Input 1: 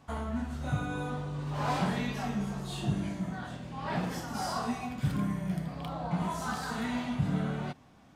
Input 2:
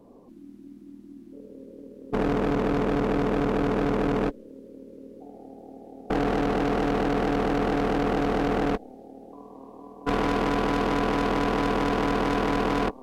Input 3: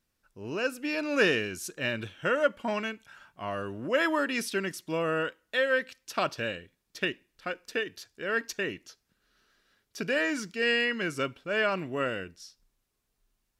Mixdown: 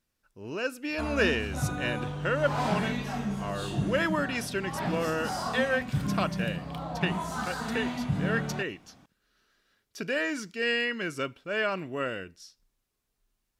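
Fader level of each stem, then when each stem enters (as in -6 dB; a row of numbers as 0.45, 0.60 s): +1.0 dB, off, -1.5 dB; 0.90 s, off, 0.00 s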